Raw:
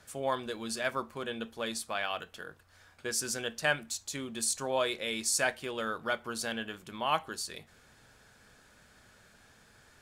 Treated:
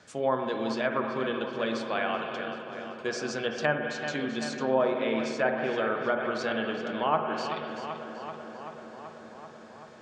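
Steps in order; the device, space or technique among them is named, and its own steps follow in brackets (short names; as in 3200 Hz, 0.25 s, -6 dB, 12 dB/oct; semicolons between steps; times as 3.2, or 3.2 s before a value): LPF 7000 Hz 24 dB/oct; dub delay into a spring reverb (darkening echo 0.384 s, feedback 78%, low-pass 3100 Hz, level -10 dB; spring tank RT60 1.8 s, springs 46/53 ms, chirp 80 ms, DRR 4.5 dB); treble ducked by the level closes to 1400 Hz, closed at -26 dBFS; HPF 180 Hz 12 dB/oct; low shelf 460 Hz +6.5 dB; gain +2.5 dB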